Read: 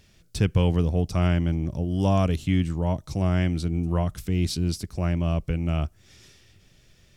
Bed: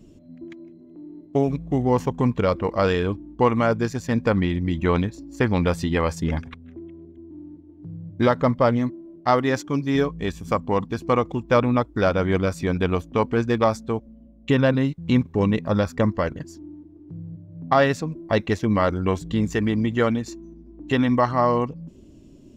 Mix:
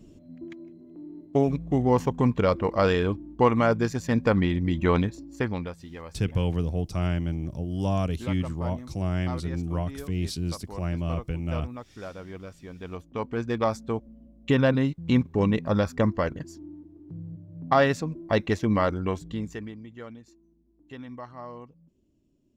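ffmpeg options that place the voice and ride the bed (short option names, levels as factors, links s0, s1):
-filter_complex "[0:a]adelay=5800,volume=0.596[s0];[1:a]volume=5.62,afade=t=out:st=5.1:d=0.65:silence=0.133352,afade=t=in:st=12.78:d=1.32:silence=0.149624,afade=t=out:st=18.73:d=1.05:silence=0.11885[s1];[s0][s1]amix=inputs=2:normalize=0"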